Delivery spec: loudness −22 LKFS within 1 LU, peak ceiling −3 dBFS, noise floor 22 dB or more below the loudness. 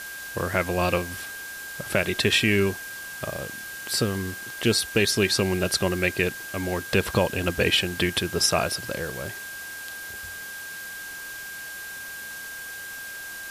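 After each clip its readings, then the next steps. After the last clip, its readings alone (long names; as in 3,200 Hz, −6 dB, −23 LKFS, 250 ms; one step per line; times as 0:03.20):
interfering tone 1,600 Hz; level of the tone −36 dBFS; background noise floor −37 dBFS; target noise floor −48 dBFS; integrated loudness −26.0 LKFS; sample peak −7.5 dBFS; target loudness −22.0 LKFS
→ notch filter 1,600 Hz, Q 30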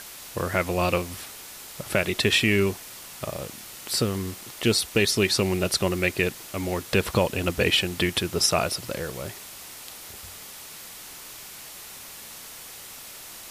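interfering tone none found; background noise floor −42 dBFS; target noise floor −47 dBFS
→ broadband denoise 6 dB, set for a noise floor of −42 dBFS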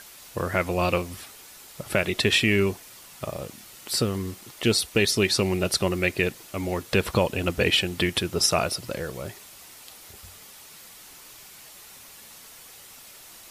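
background noise floor −47 dBFS; integrated loudness −24.5 LKFS; sample peak −7.5 dBFS; target loudness −22.0 LKFS
→ level +2.5 dB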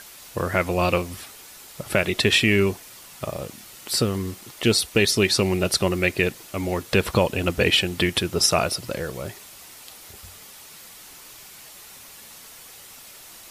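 integrated loudness −22.0 LKFS; sample peak −5.0 dBFS; background noise floor −45 dBFS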